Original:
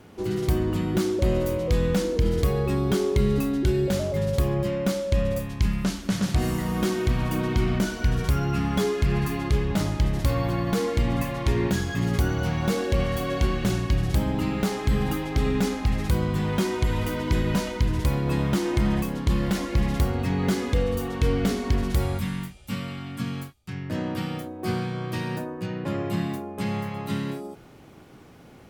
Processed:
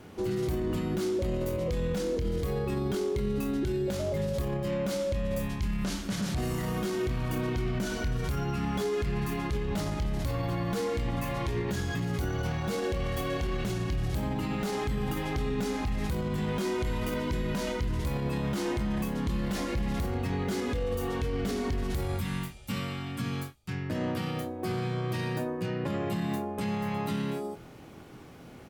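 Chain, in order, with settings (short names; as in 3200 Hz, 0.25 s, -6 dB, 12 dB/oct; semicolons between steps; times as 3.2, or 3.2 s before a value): doubler 24 ms -9 dB; limiter -23 dBFS, peak gain reduction 11.5 dB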